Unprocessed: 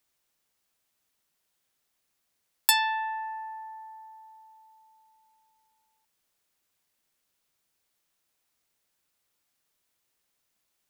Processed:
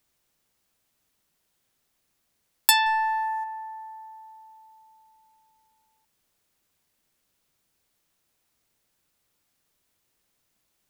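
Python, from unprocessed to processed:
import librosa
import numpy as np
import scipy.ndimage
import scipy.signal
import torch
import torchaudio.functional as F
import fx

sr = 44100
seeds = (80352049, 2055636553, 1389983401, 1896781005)

y = fx.low_shelf(x, sr, hz=390.0, db=7.0)
y = fx.leveller(y, sr, passes=1, at=(2.86, 3.44))
y = y * 10.0 ** (3.0 / 20.0)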